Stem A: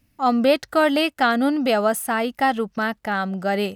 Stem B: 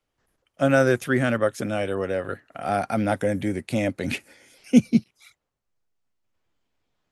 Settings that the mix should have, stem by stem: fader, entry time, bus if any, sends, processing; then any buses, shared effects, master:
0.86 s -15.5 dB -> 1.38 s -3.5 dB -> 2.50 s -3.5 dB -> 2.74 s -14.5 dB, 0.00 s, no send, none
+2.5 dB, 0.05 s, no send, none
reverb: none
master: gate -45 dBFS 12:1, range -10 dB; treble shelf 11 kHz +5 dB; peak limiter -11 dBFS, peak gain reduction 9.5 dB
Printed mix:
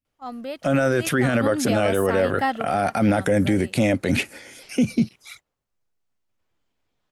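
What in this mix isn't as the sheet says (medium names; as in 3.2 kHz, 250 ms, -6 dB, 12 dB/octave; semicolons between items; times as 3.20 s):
stem B +2.5 dB -> +10.5 dB; master: missing treble shelf 11 kHz +5 dB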